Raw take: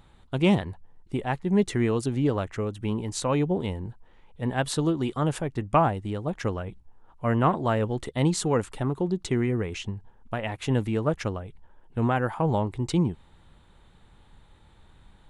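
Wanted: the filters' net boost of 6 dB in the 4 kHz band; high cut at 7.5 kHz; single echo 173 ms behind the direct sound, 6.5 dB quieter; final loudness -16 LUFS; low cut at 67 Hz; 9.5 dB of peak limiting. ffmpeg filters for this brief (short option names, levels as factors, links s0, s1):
-af "highpass=67,lowpass=7500,equalizer=f=4000:t=o:g=8,alimiter=limit=0.126:level=0:latency=1,aecho=1:1:173:0.473,volume=4.22"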